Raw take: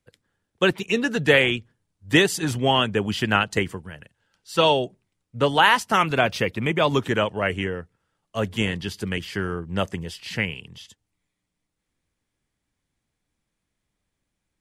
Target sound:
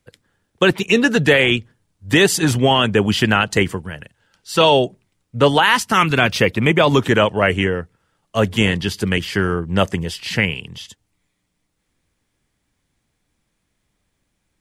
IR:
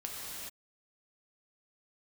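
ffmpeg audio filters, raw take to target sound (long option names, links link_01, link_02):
-filter_complex "[0:a]asettb=1/sr,asplit=3[link_01][link_02][link_03];[link_01]atrim=end=5.634[link_04];[link_02]atrim=start=5.63:end=6.36,asetpts=PTS-STARTPTS,afade=type=in:duration=0.004:curve=qsin,afade=type=out:start_time=0.726:duration=0.004:curve=qsin,equalizer=frequency=630:width_type=o:width=1.1:gain=-8[link_05];[link_03]atrim=start=6.356[link_06];[link_04][link_05]acrossfade=duration=0.004:curve1=hsin:curve2=qsin[link_07];[link_07][link_06]acrossfade=duration=0.004:curve1=qsin:curve2=hsin,alimiter=limit=-12dB:level=0:latency=1:release=13,volume=8.5dB"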